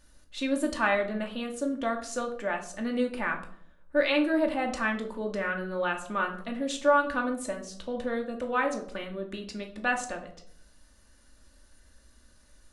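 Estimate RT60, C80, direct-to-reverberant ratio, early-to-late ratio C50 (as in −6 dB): 0.60 s, 14.5 dB, 1.5 dB, 10.5 dB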